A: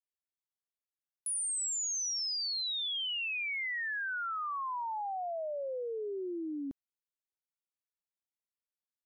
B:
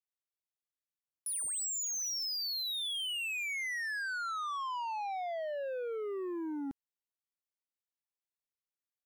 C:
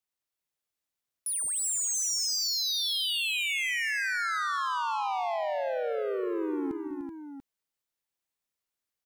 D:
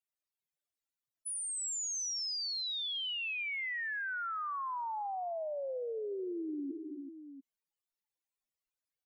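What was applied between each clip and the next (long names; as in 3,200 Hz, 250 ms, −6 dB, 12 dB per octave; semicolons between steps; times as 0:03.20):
leveller curve on the samples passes 2; level −3 dB
multi-tap delay 156/197/223/298/380/689 ms −19/−15/−17.5/−9.5/−7/−10 dB; level +5 dB
expanding power law on the bin magnitudes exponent 3.8; level −6.5 dB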